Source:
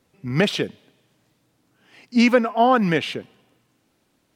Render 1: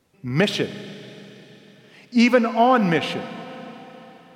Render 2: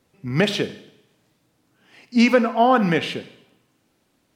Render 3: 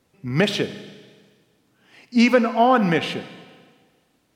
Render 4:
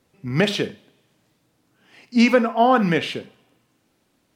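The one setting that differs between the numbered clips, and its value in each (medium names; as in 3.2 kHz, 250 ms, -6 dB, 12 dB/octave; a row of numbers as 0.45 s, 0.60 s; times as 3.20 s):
Schroeder reverb, RT60: 4.2 s, 0.76 s, 1.6 s, 0.32 s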